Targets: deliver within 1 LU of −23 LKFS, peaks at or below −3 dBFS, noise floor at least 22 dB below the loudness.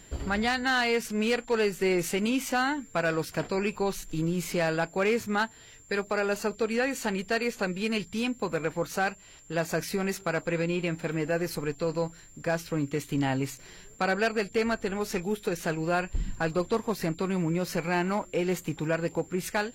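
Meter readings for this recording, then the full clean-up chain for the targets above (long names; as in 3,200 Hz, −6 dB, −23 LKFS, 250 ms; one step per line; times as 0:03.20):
share of clipped samples 0.5%; peaks flattened at −19.0 dBFS; interfering tone 7,300 Hz; level of the tone −53 dBFS; integrated loudness −29.0 LKFS; sample peak −19.0 dBFS; target loudness −23.0 LKFS
→ clipped peaks rebuilt −19 dBFS
notch filter 7,300 Hz, Q 30
level +6 dB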